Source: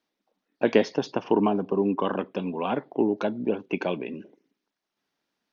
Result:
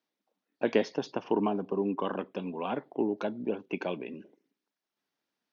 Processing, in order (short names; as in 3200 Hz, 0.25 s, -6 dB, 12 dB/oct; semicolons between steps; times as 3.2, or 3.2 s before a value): low shelf 63 Hz -9.5 dB; gain -5.5 dB